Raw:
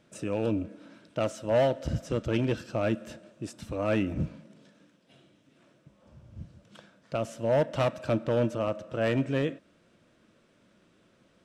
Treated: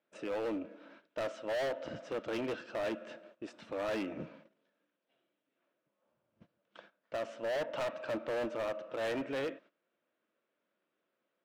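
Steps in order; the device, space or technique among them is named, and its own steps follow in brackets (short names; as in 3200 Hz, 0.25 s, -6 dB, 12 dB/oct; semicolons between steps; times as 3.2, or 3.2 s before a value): walkie-talkie (BPF 410–2900 Hz; hard clip -32 dBFS, distortion -5 dB; gate -57 dBFS, range -16 dB)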